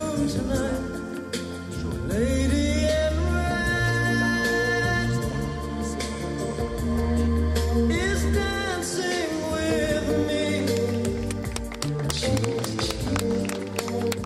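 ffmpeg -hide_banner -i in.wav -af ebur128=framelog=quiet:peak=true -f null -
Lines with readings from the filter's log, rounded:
Integrated loudness:
  I:         -25.3 LUFS
  Threshold: -35.3 LUFS
Loudness range:
  LRA:         2.7 LU
  Threshold: -45.0 LUFS
  LRA low:   -26.1 LUFS
  LRA high:  -23.3 LUFS
True peak:
  Peak:       -8.0 dBFS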